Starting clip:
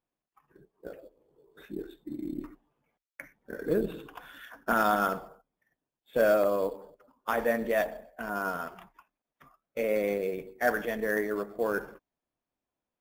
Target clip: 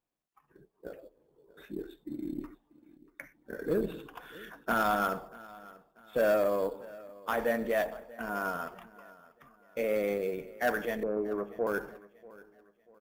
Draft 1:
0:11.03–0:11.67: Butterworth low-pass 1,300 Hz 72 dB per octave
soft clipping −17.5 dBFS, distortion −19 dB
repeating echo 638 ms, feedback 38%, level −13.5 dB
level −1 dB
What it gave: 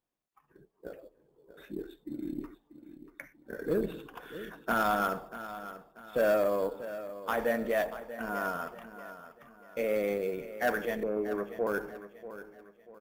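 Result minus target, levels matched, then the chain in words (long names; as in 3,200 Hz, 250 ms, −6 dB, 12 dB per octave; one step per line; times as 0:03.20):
echo-to-direct +7.5 dB
0:11.03–0:11.67: Butterworth low-pass 1,300 Hz 72 dB per octave
soft clipping −17.5 dBFS, distortion −19 dB
repeating echo 638 ms, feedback 38%, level −21 dB
level −1 dB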